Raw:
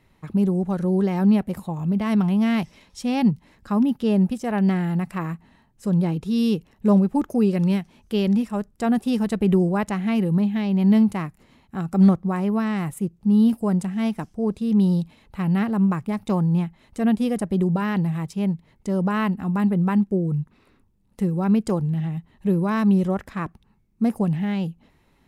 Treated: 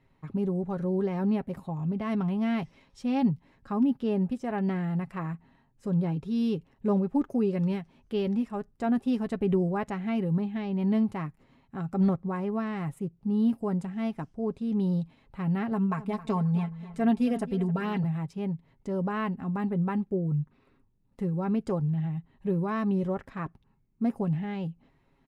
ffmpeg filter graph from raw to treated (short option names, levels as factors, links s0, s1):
-filter_complex "[0:a]asettb=1/sr,asplit=3[s0][s1][s2];[s0]atrim=end=15.714[s3];[s1]atrim=start=15.71:end=18.04,asetpts=PTS-STARTPTS,afade=t=in:d=0.004:c=qsin,afade=t=out:st=2.326:d=0.004:c=qsin,tiltshelf=f=710:g=-3,aecho=1:1:4.5:0.78,atrim=end_sample=102753,asplit=2[s4][s5];[s5]adelay=266,lowpass=f=4000:p=1,volume=0.168,asplit=2[s6][s7];[s7]adelay=266,lowpass=f=4000:p=1,volume=0.4,asplit=2[s8][s9];[s9]adelay=266,lowpass=f=4000:p=1,volume=0.4,asplit=2[s10][s11];[s11]adelay=266,lowpass=f=4000:p=1,volume=0.4[s12];[s4][s6][s8][s10][s12]amix=inputs=5:normalize=0,atrim=end_sample=102753[s13];[s2]atrim=start=18.036[s14];[s3][s13]acrossfade=d=0.004:c1=hsin:c2=qsin[s15];[s15][s14]acrossfade=d=0.004:c1=qsin:c2=hsin,lowpass=f=2300:p=1,aecho=1:1:7.4:0.4,volume=0.501"